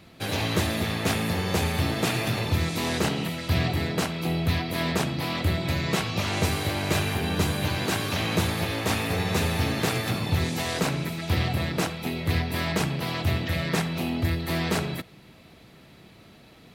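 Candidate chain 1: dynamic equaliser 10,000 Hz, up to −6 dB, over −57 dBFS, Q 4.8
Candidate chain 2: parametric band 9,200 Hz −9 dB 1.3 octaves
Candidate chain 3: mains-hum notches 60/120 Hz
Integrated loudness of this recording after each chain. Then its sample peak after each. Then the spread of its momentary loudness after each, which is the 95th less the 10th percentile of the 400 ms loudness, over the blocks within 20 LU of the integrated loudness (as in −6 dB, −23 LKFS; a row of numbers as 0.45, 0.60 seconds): −26.5, −27.0, −26.5 LKFS; −11.5, −12.0, −11.5 dBFS; 2, 2, 2 LU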